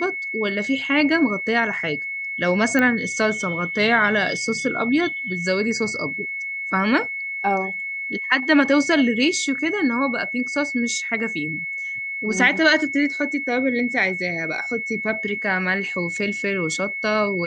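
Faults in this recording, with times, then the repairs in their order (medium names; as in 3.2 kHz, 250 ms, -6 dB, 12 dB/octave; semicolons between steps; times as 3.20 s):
whine 2.2 kHz -26 dBFS
2.79 s: pop -8 dBFS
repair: de-click; band-stop 2.2 kHz, Q 30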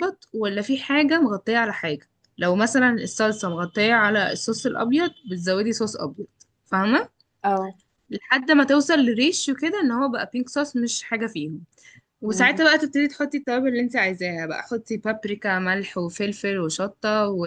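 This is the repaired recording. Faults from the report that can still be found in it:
nothing left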